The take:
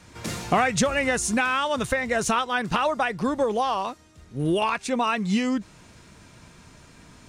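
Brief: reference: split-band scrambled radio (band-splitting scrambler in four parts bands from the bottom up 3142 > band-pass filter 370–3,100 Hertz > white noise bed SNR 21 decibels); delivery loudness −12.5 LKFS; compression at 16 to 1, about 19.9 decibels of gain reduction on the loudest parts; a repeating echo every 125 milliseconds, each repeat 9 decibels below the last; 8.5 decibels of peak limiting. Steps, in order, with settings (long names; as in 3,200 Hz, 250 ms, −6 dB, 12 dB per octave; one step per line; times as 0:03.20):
downward compressor 16 to 1, threshold −37 dBFS
brickwall limiter −33.5 dBFS
repeating echo 125 ms, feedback 35%, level −9 dB
band-splitting scrambler in four parts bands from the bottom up 3142
band-pass filter 370–3,100 Hz
white noise bed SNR 21 dB
level +29.5 dB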